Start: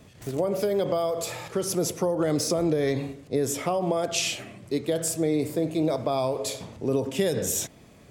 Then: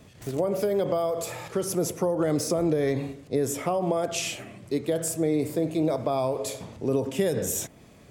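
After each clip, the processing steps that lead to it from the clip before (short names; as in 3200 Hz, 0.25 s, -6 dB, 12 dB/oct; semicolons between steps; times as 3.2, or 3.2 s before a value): dynamic EQ 4200 Hz, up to -6 dB, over -44 dBFS, Q 1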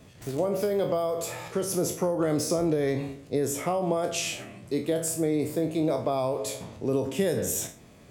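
spectral trails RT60 0.33 s; gain -1.5 dB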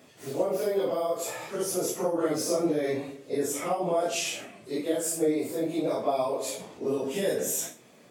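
phase scrambler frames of 0.1 s; HPF 250 Hz 12 dB/oct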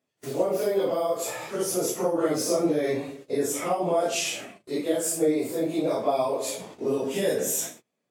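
gate -46 dBFS, range -28 dB; gain +2.5 dB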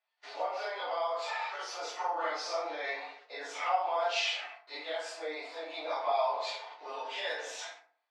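Chebyshev band-pass 780–4500 Hz, order 3; FDN reverb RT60 0.5 s, low-frequency decay 1.1×, high-frequency decay 0.5×, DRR 0.5 dB; gain -1 dB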